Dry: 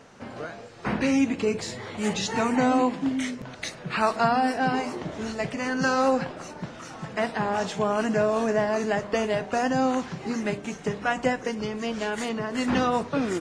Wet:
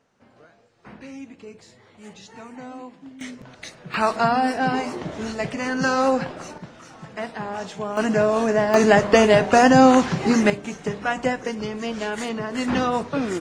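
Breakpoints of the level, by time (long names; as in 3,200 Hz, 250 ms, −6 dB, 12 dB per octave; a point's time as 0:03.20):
−16 dB
from 0:03.21 −4.5 dB
from 0:03.94 +2.5 dB
from 0:06.58 −4 dB
from 0:07.97 +4 dB
from 0:08.74 +11 dB
from 0:10.50 +1.5 dB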